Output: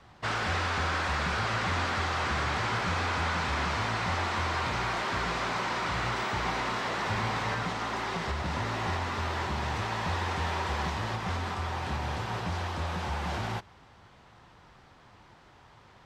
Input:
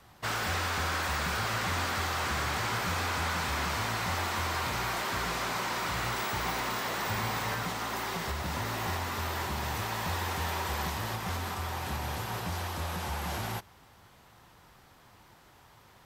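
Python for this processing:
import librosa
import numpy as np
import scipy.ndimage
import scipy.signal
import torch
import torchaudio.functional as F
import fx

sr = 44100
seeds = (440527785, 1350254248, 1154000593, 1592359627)

y = fx.air_absorb(x, sr, metres=100.0)
y = F.gain(torch.from_numpy(y), 2.5).numpy()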